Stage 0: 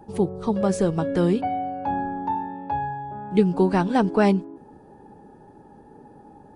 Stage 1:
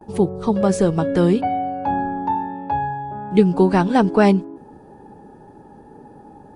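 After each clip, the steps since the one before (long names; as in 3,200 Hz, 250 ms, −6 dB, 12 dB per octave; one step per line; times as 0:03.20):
noise gate with hold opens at −42 dBFS
level +4.5 dB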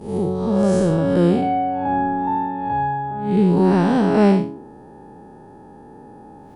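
spectrum smeared in time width 190 ms
level +3 dB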